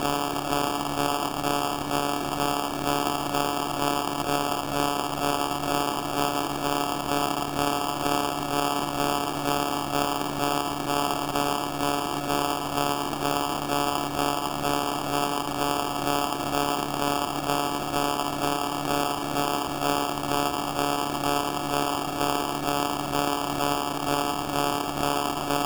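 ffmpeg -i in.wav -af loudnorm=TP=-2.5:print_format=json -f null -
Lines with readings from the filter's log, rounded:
"input_i" : "-26.4",
"input_tp" : "-8.8",
"input_lra" : "0.3",
"input_thresh" : "-36.4",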